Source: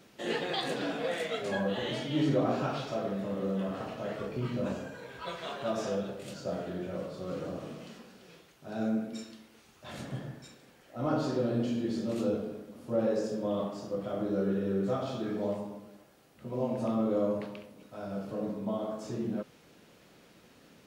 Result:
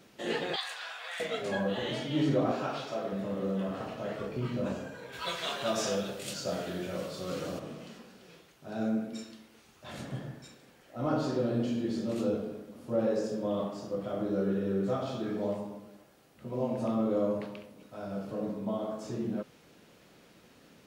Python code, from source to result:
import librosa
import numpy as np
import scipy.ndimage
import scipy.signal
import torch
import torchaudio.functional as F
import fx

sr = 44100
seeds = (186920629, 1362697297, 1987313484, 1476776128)

y = fx.highpass(x, sr, hz=960.0, slope=24, at=(0.56, 1.2))
y = fx.highpass(y, sr, hz=290.0, slope=6, at=(2.51, 3.13))
y = fx.high_shelf(y, sr, hz=2000.0, db=12.0, at=(5.12, 7.58), fade=0.02)